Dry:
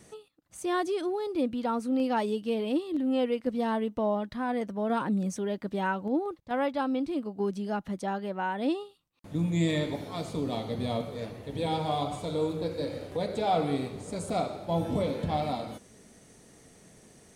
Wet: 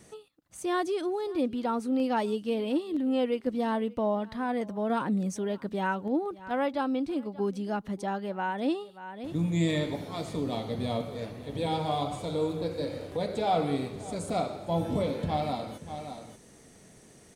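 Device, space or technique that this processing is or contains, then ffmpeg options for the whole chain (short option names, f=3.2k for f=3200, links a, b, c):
ducked delay: -filter_complex "[0:a]asplit=3[a][b][c];[b]adelay=583,volume=-8.5dB[d];[c]apad=whole_len=791211[e];[d][e]sidechaincompress=threshold=-48dB:ratio=4:attack=16:release=240[f];[a][f]amix=inputs=2:normalize=0"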